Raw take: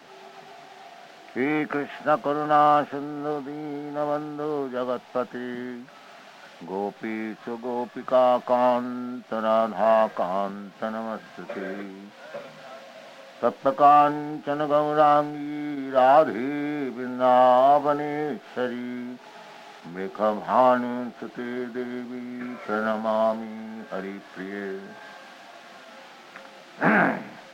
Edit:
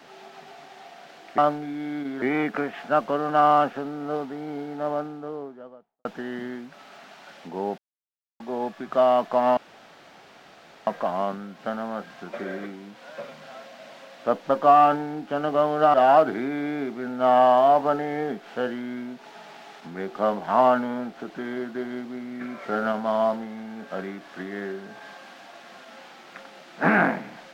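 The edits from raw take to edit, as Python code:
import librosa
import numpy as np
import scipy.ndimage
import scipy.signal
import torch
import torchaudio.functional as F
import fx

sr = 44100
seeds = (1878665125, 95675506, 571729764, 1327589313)

y = fx.studio_fade_out(x, sr, start_s=3.8, length_s=1.41)
y = fx.edit(y, sr, fx.silence(start_s=6.94, length_s=0.62),
    fx.room_tone_fill(start_s=8.73, length_s=1.3),
    fx.move(start_s=15.1, length_s=0.84, to_s=1.38), tone=tone)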